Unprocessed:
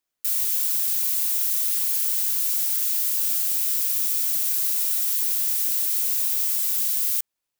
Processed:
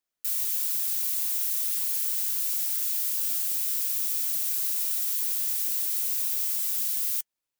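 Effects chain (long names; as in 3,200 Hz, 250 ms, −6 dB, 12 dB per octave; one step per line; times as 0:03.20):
flanger 0.97 Hz, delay 3.5 ms, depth 7 ms, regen −65%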